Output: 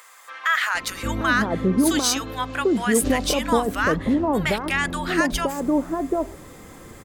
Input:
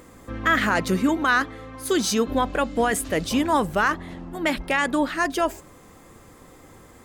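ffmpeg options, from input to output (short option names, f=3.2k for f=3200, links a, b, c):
-filter_complex "[0:a]alimiter=limit=-16.5dB:level=0:latency=1:release=123,acrossover=split=880[a][b];[a]adelay=750[c];[c][b]amix=inputs=2:normalize=0,volume=6.5dB"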